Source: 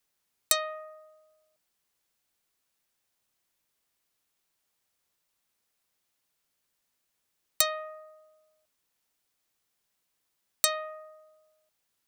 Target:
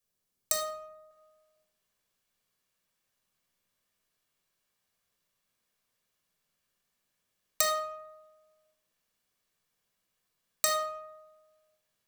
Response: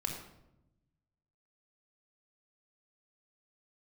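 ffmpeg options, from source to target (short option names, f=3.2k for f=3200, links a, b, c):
-filter_complex "[0:a]asetnsamples=n=441:p=0,asendcmd='1.11 equalizer g 2.5',equalizer=f=1.8k:w=0.5:g=-5[a];[1:a]atrim=start_sample=2205,asetrate=57330,aresample=44100[b];[a][b]afir=irnorm=-1:irlink=0,volume=-1.5dB"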